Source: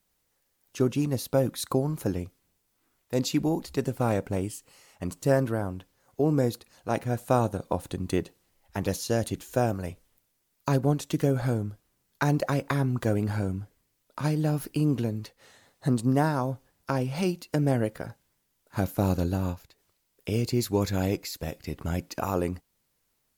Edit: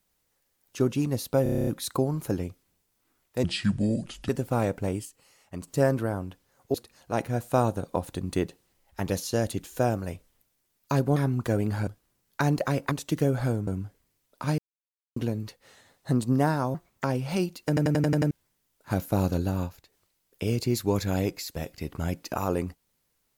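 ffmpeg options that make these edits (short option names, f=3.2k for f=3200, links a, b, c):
-filter_complex "[0:a]asplit=29[a][b][c][d][e][f][g][h][i][j][k][l][m][n][o][p][q][r][s][t][u][v][w][x][y][z][aa][ab][ac];[a]atrim=end=1.462[ad];[b]atrim=start=1.428:end=1.462[ae];[c]atrim=start=1.428:end=1.462[af];[d]atrim=start=1.428:end=1.462[ag];[e]atrim=start=1.428:end=1.462[ah];[f]atrim=start=1.428:end=1.462[ai];[g]atrim=start=1.428:end=1.462[aj];[h]atrim=start=1.428:end=1.462[ak];[i]atrim=start=1.428:end=3.204[al];[j]atrim=start=3.2:end=3.78,asetpts=PTS-STARTPTS,asetrate=29988,aresample=44100[am];[k]atrim=start=3.776:end=4.542[an];[l]atrim=start=4.538:end=5.162,asetpts=PTS-STARTPTS,volume=-4.5dB[ao];[m]atrim=start=5.158:end=6.232[ap];[n]atrim=start=6.508:end=10.932[aq];[o]atrim=start=12.728:end=13.442[ar];[p]atrim=start=11.688:end=12.732[as];[q]atrim=start=10.928:end=11.692[at];[r]atrim=start=13.438:end=14.35,asetpts=PTS-STARTPTS,afade=t=out:st=0.908:d=0.004:c=hsin[au];[s]atrim=start=14.35:end=14.93,asetpts=PTS-STARTPTS,volume=0[av];[t]atrim=start=14.93:end=16.514,asetpts=PTS-STARTPTS,afade=t=in:d=0.004:c=hsin[aw];[u]atrim=start=16.51:end=16.9,asetpts=PTS-STARTPTS,asetrate=58212,aresample=44100[ax];[v]atrim=start=16.896:end=17.632[ay];[w]atrim=start=17.538:end=17.632[az];[x]atrim=start=17.538:end=17.632[ba];[y]atrim=start=17.538:end=17.632[bb];[z]atrim=start=17.538:end=17.632[bc];[aa]atrim=start=17.538:end=17.632[bd];[ab]atrim=start=17.538:end=17.632[be];[ac]atrim=start=18.168[bf];[ad][ae]acrossfade=d=0.004:c1=hsin:c2=hsin[bg];[bg][af]acrossfade=d=0.004:c1=hsin:c2=hsin[bh];[bh][ag]acrossfade=d=0.004:c1=hsin:c2=hsin[bi];[bi][ah]acrossfade=d=0.004:c1=hsin:c2=hsin[bj];[bj][ai]acrossfade=d=0.004:c1=hsin:c2=hsin[bk];[bk][aj]acrossfade=d=0.004:c1=hsin:c2=hsin[bl];[bl][ak]acrossfade=d=0.004:c1=hsin:c2=hsin[bm];[bm][al]acrossfade=d=0.004:c1=hsin:c2=hsin[bn];[bn][am]acrossfade=d=0.004:c1=hsin:c2=hsin[bo];[bo][an]acrossfade=d=0.004:c1=hsin:c2=hsin[bp];[bp][ao]acrossfade=d=0.004:c1=hsin:c2=hsin[bq];[bq][ap]acrossfade=d=0.004:c1=hsin:c2=hsin[br];[br][aq]acrossfade=d=0.004:c1=hsin:c2=hsin[bs];[bs][ar]acrossfade=d=0.004:c1=hsin:c2=hsin[bt];[bt][as]acrossfade=d=0.004:c1=hsin:c2=hsin[bu];[bu][at]acrossfade=d=0.004:c1=hsin:c2=hsin[bv];[au][av][aw]concat=n=3:v=0:a=1[bw];[bv][bw]acrossfade=d=0.004:c1=hsin:c2=hsin[bx];[bx][ax]acrossfade=d=0.004:c1=hsin:c2=hsin[by];[by][ay]acrossfade=d=0.004:c1=hsin:c2=hsin[bz];[bz][az]acrossfade=d=0.004:c1=hsin:c2=hsin[ca];[ca][ba]acrossfade=d=0.004:c1=hsin:c2=hsin[cb];[cb][bb]acrossfade=d=0.004:c1=hsin:c2=hsin[cc];[cc][bc]acrossfade=d=0.004:c1=hsin:c2=hsin[cd];[cd][bd]acrossfade=d=0.004:c1=hsin:c2=hsin[ce];[ce][be]acrossfade=d=0.004:c1=hsin:c2=hsin[cf];[cf][bf]acrossfade=d=0.004:c1=hsin:c2=hsin"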